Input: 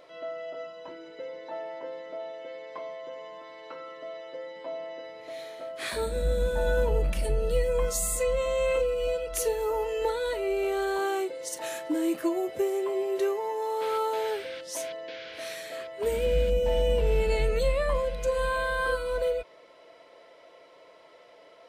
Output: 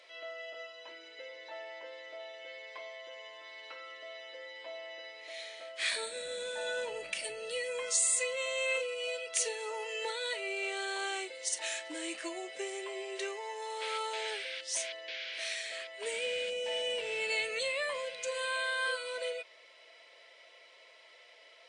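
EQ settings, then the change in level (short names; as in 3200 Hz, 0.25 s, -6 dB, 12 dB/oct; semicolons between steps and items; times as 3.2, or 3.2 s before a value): HPF 560 Hz 12 dB/oct; brick-wall FIR low-pass 9700 Hz; resonant high shelf 1600 Hz +8.5 dB, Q 1.5; -6.0 dB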